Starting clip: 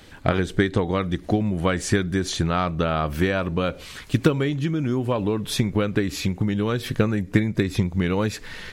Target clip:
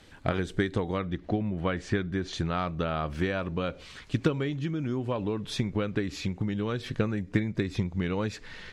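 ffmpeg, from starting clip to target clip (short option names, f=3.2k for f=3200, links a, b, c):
-af "asetnsamples=n=441:p=0,asendcmd='0.98 lowpass f 3600;2.33 lowpass f 6600',lowpass=11k,volume=-7dB"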